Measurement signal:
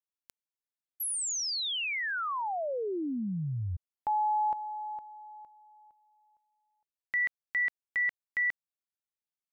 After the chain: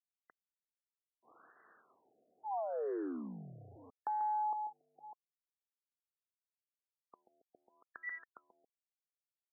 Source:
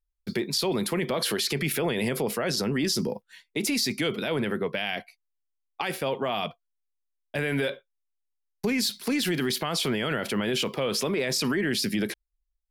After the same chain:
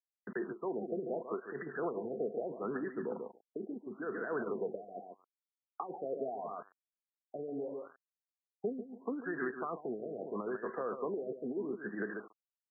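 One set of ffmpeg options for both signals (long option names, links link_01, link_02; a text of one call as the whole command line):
ffmpeg -i in.wav -af "aecho=1:1:141|282|423:0.398|0.0717|0.0129,aresample=16000,aeval=exprs='val(0)*gte(abs(val(0)),0.00841)':channel_layout=same,aresample=44100,highpass=470,equalizer=frequency=570:width_type=q:width=4:gain=-8,equalizer=frequency=870:width_type=q:width=4:gain=-8,equalizer=frequency=2600:width_type=q:width=4:gain=7,equalizer=frequency=4500:width_type=q:width=4:gain=5,lowpass=frequency=5300:width=0.5412,lowpass=frequency=5300:width=1.3066,alimiter=limit=-22dB:level=0:latency=1:release=31,acompressor=threshold=-36dB:ratio=3:attack=99:release=93:knee=6,bandreject=frequency=1900:width=7.9,afftfilt=real='re*lt(b*sr/1024,730*pow(2000/730,0.5+0.5*sin(2*PI*0.77*pts/sr)))':imag='im*lt(b*sr/1024,730*pow(2000/730,0.5+0.5*sin(2*PI*0.77*pts/sr)))':win_size=1024:overlap=0.75,volume=2dB" out.wav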